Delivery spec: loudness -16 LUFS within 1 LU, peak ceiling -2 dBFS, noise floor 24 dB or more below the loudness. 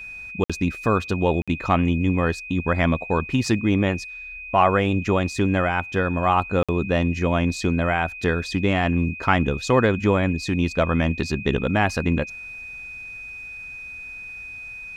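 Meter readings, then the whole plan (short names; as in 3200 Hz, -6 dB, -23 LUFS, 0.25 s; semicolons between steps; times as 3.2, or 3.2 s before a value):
dropouts 3; longest dropout 56 ms; steady tone 2500 Hz; tone level -34 dBFS; loudness -22.0 LUFS; peak -4.5 dBFS; loudness target -16.0 LUFS
-> interpolate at 0.44/1.42/6.63, 56 ms; notch 2500 Hz, Q 30; gain +6 dB; limiter -2 dBFS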